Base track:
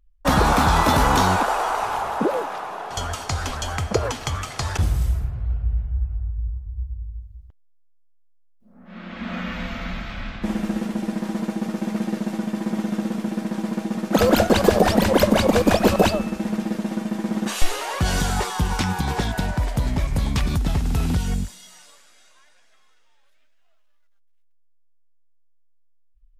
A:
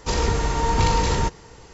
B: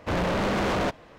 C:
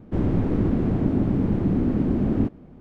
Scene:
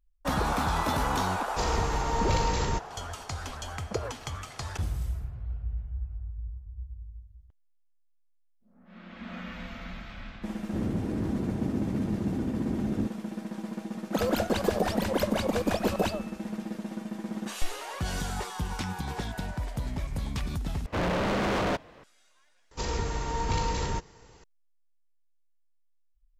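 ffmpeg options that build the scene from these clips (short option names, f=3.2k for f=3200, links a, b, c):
-filter_complex "[1:a]asplit=2[a][b];[0:a]volume=-10.5dB[c];[3:a]highpass=47[d];[c]asplit=2[e][f];[e]atrim=end=20.864[g];[2:a]atrim=end=1.18,asetpts=PTS-STARTPTS,volume=-2dB[h];[f]atrim=start=22.036[i];[a]atrim=end=1.73,asetpts=PTS-STARTPTS,volume=-7dB,afade=t=in:d=0.004:c=hsin,afade=t=out:st=1.726:d=0.004:c=hsin,adelay=1500[j];[d]atrim=end=2.8,asetpts=PTS-STARTPTS,volume=-9dB,afade=t=in:d=0.004:c=hsin,afade=t=out:st=2.796:d=0.004:c=hsin,adelay=10600[k];[b]atrim=end=1.73,asetpts=PTS-STARTPTS,volume=-9dB,afade=t=in:d=0.004:c=hsin,afade=t=out:st=1.726:d=0.004:c=hsin,adelay=22710[l];[g][h]acrossfade=d=0.004:c1=hsin:c2=hsin[m];[m][i]acrossfade=d=0.004:c1=hsin:c2=hsin[n];[n][j][k][l]amix=inputs=4:normalize=0"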